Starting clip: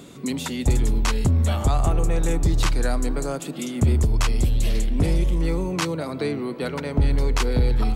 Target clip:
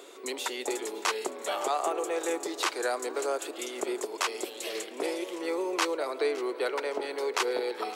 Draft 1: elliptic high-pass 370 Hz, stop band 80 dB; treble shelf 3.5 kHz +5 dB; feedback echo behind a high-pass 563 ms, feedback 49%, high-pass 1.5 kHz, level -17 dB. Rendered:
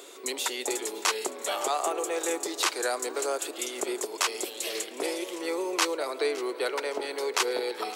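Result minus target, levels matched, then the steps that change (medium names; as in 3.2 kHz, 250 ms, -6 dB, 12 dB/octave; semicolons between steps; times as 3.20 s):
8 kHz band +4.5 dB
change: treble shelf 3.5 kHz -2.5 dB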